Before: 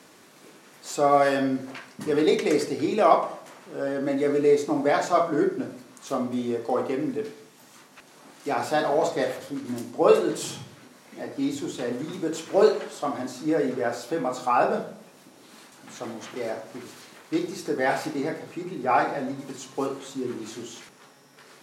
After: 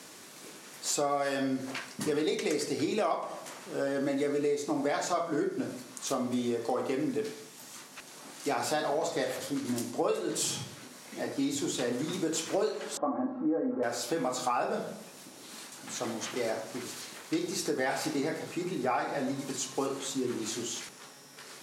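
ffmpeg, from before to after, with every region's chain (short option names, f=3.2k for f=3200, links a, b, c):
-filter_complex "[0:a]asettb=1/sr,asplit=3[a][b][c];[a]atrim=end=12.974[d];[b]atrim=start=12.97:end=13.83,asetpts=PTS-STARTPTS,afade=t=in:d=0.004:c=qsin,afade=t=out:st=0.856:d=0.004:c=qsin,lowpass=f=1.2k:w=0.5412,lowpass=f=1.2k:w=1.3066,aecho=1:1:3.7:0.76,atrim=end_sample=37926[e];[c]atrim=start=13.826[f];[d][e]acrossfade=d=0.004:c1=hsin:c2=qsin[g];[g][f]acrossfade=d=0.004:c1=qsin:c2=hsin,equalizer=f=8.2k:t=o:w=2.5:g=7.5,acompressor=threshold=-27dB:ratio=6"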